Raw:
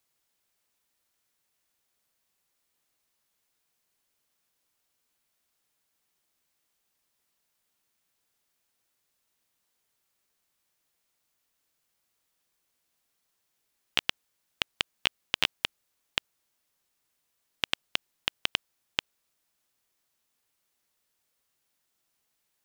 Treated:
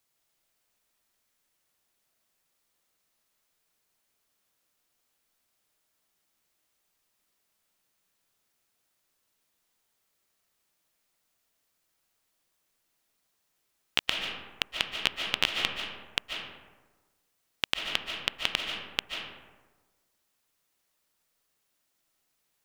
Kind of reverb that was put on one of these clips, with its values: algorithmic reverb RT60 1.3 s, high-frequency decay 0.45×, pre-delay 105 ms, DRR 2 dB

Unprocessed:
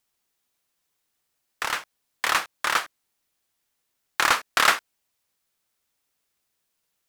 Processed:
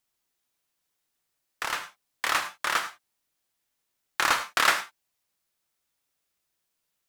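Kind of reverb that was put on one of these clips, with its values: gated-style reverb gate 130 ms flat, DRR 8 dB; trim -3.5 dB

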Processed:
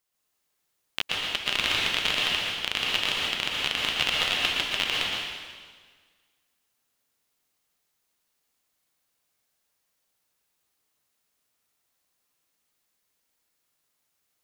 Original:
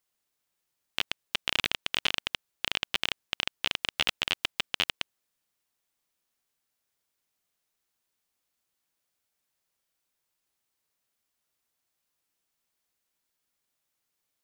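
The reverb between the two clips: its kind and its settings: plate-style reverb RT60 1.6 s, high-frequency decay 0.95×, pre-delay 105 ms, DRR -4 dB

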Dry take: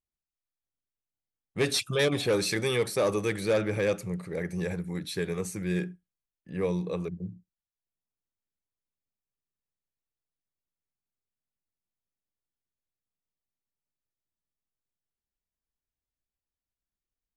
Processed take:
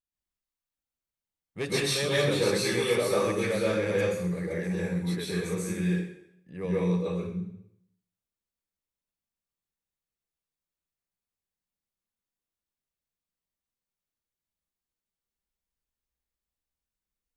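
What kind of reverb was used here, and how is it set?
plate-style reverb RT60 0.71 s, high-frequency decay 0.95×, pre-delay 115 ms, DRR -7 dB; trim -6.5 dB

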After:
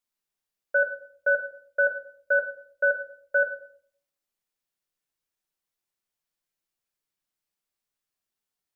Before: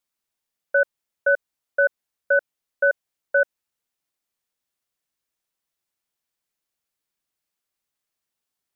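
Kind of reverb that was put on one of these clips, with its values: simulated room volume 65 m³, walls mixed, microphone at 0.45 m; trim -5 dB

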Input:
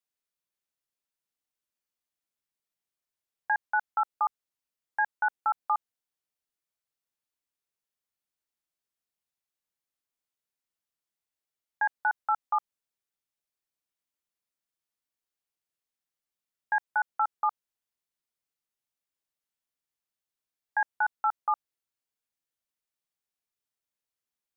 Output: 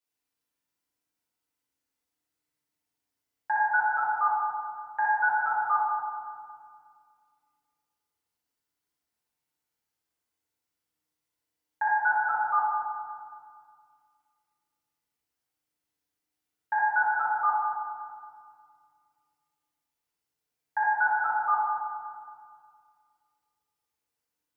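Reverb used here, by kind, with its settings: FDN reverb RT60 2 s, low-frequency decay 1.4×, high-frequency decay 0.5×, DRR -9.5 dB; trim -4 dB

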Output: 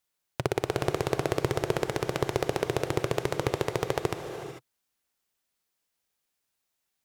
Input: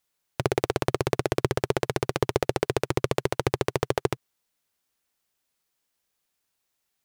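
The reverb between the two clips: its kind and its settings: gated-style reverb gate 470 ms rising, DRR 7.5 dB; trim -3 dB

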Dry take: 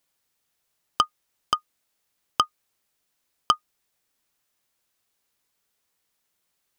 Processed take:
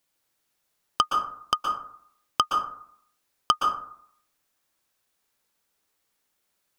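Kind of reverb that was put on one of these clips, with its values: plate-style reverb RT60 0.63 s, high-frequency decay 0.4×, pre-delay 110 ms, DRR 1 dB; trim -1 dB

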